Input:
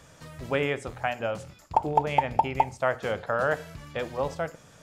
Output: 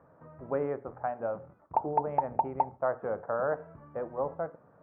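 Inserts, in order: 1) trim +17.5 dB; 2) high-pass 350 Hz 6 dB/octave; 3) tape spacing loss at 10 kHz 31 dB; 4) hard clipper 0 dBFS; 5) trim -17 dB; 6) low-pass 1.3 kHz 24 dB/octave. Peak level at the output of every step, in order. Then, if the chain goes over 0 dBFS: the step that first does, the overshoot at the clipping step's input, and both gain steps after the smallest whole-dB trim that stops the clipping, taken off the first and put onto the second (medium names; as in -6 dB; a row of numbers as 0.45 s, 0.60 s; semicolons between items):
+9.0 dBFS, +8.5 dBFS, +6.0 dBFS, 0.0 dBFS, -17.0 dBFS, -15.5 dBFS; step 1, 6.0 dB; step 1 +11.5 dB, step 5 -11 dB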